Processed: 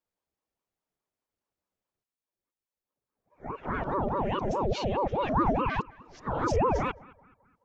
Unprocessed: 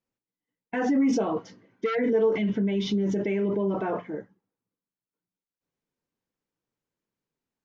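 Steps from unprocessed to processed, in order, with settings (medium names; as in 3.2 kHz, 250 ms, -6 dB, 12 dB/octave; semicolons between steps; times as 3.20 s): reverse the whole clip; band-passed feedback delay 213 ms, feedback 52%, band-pass 800 Hz, level -19.5 dB; ring modulator with a swept carrier 480 Hz, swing 65%, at 4.8 Hz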